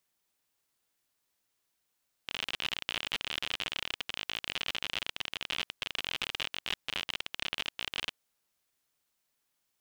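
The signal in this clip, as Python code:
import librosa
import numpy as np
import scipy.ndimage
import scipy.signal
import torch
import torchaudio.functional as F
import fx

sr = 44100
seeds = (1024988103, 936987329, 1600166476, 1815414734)

y = fx.geiger_clicks(sr, seeds[0], length_s=5.84, per_s=52.0, level_db=-17.0)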